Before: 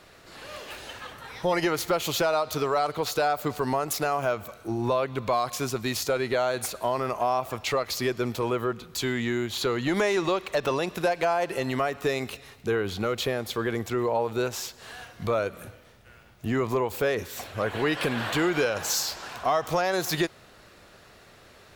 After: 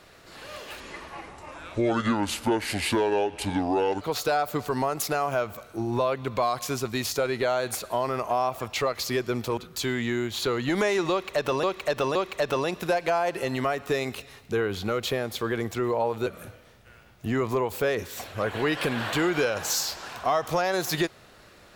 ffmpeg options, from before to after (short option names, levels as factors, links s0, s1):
-filter_complex "[0:a]asplit=7[s0][s1][s2][s3][s4][s5][s6];[s0]atrim=end=0.804[s7];[s1]atrim=start=0.8:end=2.92,asetpts=PTS-STARTPTS,asetrate=29106,aresample=44100[s8];[s2]atrim=start=2.916:end=8.482[s9];[s3]atrim=start=8.758:end=10.822[s10];[s4]atrim=start=10.298:end=10.822[s11];[s5]atrim=start=10.298:end=14.412[s12];[s6]atrim=start=15.458[s13];[s7][s8]acrossfade=d=0.004:c1=hsin:c2=hsin[s14];[s14][s9]acrossfade=d=0.004:c1=hsin:c2=hsin[s15];[s15][s10]acrossfade=d=0.004:c1=hsin:c2=hsin[s16];[s16][s11]acrossfade=d=0.004:c1=hsin:c2=hsin[s17];[s17][s12]acrossfade=d=0.004:c1=hsin:c2=hsin[s18];[s18][s13]acrossfade=d=0.004:c1=hsin:c2=hsin"